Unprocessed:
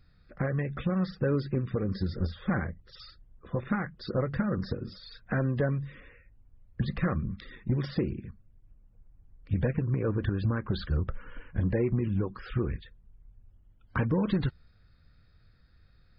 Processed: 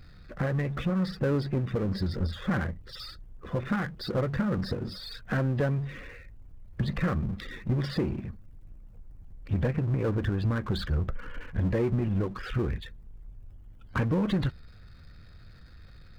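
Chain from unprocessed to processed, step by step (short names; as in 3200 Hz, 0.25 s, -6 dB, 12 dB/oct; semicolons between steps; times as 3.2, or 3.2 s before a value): power-law curve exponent 0.7; gain -1.5 dB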